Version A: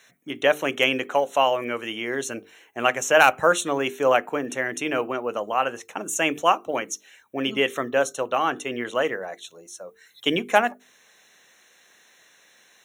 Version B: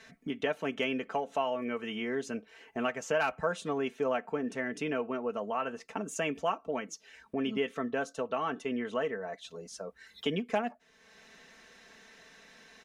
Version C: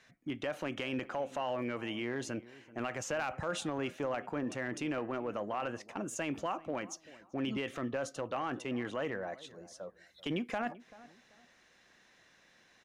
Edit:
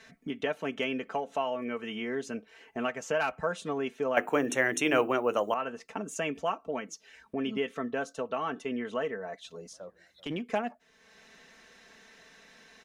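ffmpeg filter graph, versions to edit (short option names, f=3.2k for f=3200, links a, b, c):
-filter_complex "[1:a]asplit=3[a][b][c];[a]atrim=end=4.172[d];[0:a]atrim=start=4.168:end=5.542[e];[b]atrim=start=5.538:end=9.732[f];[2:a]atrim=start=9.728:end=10.412[g];[c]atrim=start=10.408[h];[d][e]acrossfade=d=0.004:c1=hsin:c2=hsin[i];[i][f]acrossfade=d=0.004:c1=hsin:c2=hsin[j];[j][g]acrossfade=d=0.004:c1=hsin:c2=hsin[k];[k][h]acrossfade=d=0.004:c1=hsin:c2=hsin"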